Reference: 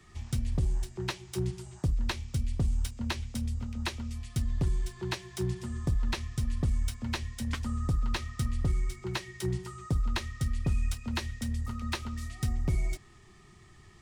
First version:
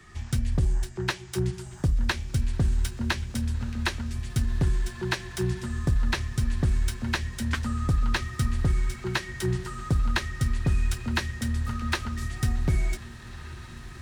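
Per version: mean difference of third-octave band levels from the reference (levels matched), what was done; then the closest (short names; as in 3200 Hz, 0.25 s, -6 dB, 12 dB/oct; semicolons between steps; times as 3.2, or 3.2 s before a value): 3.0 dB: bell 1600 Hz +7 dB 0.51 oct; on a send: diffused feedback echo 1.645 s, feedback 58%, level -15.5 dB; on the sum: gain +4.5 dB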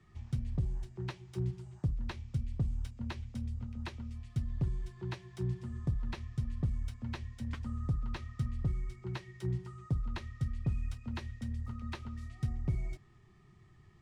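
6.5 dB: LPF 2400 Hz 6 dB/oct; bell 130 Hz +7 dB 1.1 oct; gain -8 dB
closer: first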